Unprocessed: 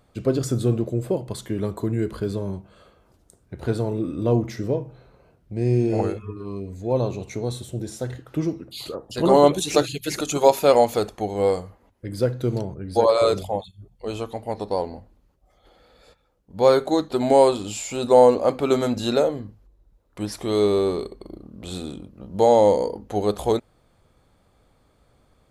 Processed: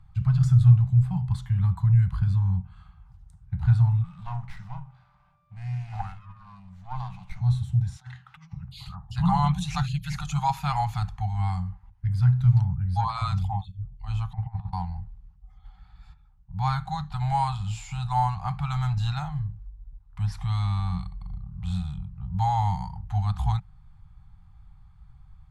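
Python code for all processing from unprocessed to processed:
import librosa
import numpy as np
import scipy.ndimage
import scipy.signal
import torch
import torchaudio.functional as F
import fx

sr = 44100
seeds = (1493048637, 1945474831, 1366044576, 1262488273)

y = fx.highpass(x, sr, hz=310.0, slope=12, at=(4.03, 7.39), fade=0.02)
y = fx.dmg_tone(y, sr, hz=590.0, level_db=-42.0, at=(4.03, 7.39), fade=0.02)
y = fx.running_max(y, sr, window=5, at=(4.03, 7.39), fade=0.02)
y = fx.chain(y, sr, fx.bandpass_q(hz=2700.0, q=0.54),
    fx.over_compress(threshold_db=-45.0, ratio=-1.0), at=(7.96, 8.53))
y = fx.chain(y, sr, fx.highpass(hz=51.0, slope=12),
    fx.over_compress(threshold_db=-34.0, ratio=-0.5),
    fx.air_absorb(metres=390.0), at=(14.33, 14.73))
y = scipy.signal.sosfilt(scipy.signal.cheby1(5, 1.0, [180.0, 770.0], 'bandstop', fs=sr, output='sos'), y)
y = fx.riaa(y, sr, side='playback')
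y = y * 10.0 ** (-2.5 / 20.0)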